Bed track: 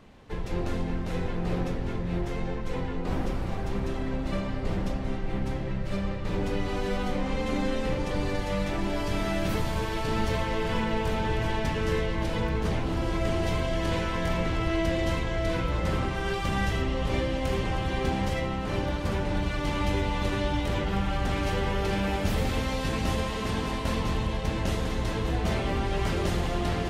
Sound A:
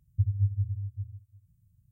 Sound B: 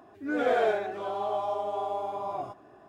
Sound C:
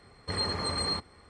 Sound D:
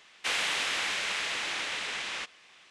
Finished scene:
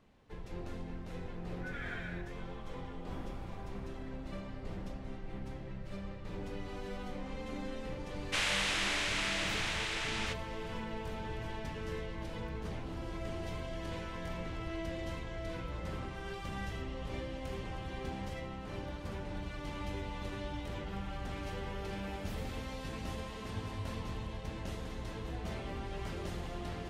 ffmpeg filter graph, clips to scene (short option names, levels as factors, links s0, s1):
-filter_complex "[0:a]volume=0.224[s0];[2:a]highpass=f=1800:t=q:w=2.8,atrim=end=2.88,asetpts=PTS-STARTPTS,volume=0.224,afade=t=in:d=0.004:c=hsin,afade=t=out:st=2.876:d=0.004:c=hsin,adelay=1350[s1];[4:a]atrim=end=2.7,asetpts=PTS-STARTPTS,volume=0.708,afade=t=in:d=0.004:c=hsin,afade=t=out:st=2.696:d=0.004:c=hsin,adelay=8080[s2];[1:a]atrim=end=1.91,asetpts=PTS-STARTPTS,volume=0.141,afade=t=in:d=0.004:c=hsin,afade=t=out:st=1.906:d=0.004:c=hsin,adelay=23370[s3];[s0][s1][s2][s3]amix=inputs=4:normalize=0"